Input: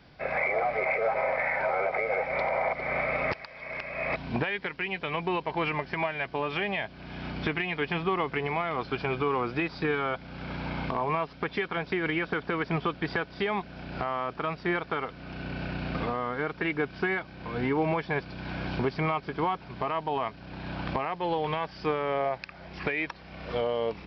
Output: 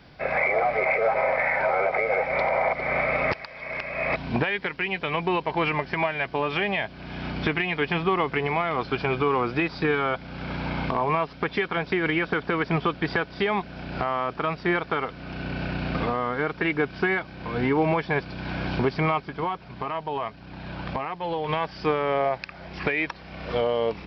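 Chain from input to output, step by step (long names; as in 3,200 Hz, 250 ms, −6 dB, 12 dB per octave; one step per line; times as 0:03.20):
0:19.22–0:21.49: flanger 1.6 Hz, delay 0.7 ms, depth 1.5 ms, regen −69%
level +4.5 dB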